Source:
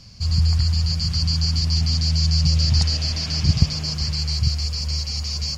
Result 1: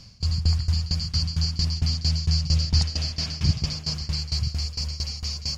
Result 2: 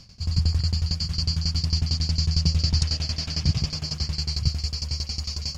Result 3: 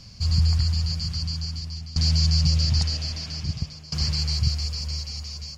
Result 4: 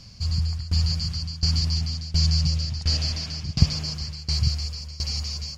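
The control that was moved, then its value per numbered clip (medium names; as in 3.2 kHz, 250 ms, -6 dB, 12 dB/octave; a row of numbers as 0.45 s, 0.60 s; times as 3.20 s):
tremolo, rate: 4.4 Hz, 11 Hz, 0.51 Hz, 1.4 Hz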